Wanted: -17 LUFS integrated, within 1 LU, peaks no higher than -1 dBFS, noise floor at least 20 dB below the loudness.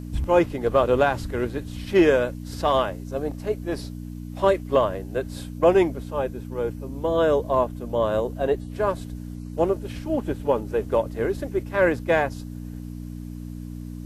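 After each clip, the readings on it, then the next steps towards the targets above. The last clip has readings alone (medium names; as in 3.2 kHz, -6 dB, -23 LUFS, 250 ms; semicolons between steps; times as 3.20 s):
hum 60 Hz; highest harmonic 300 Hz; hum level -33 dBFS; loudness -24.0 LUFS; peak level -6.0 dBFS; loudness target -17.0 LUFS
-> de-hum 60 Hz, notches 5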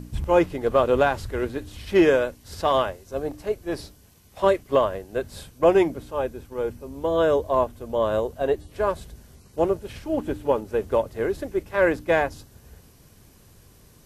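hum not found; loudness -24.0 LUFS; peak level -6.0 dBFS; loudness target -17.0 LUFS
-> trim +7 dB; peak limiter -1 dBFS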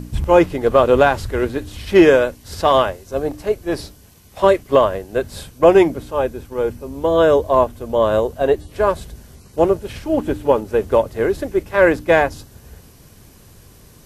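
loudness -17.0 LUFS; peak level -1.0 dBFS; noise floor -47 dBFS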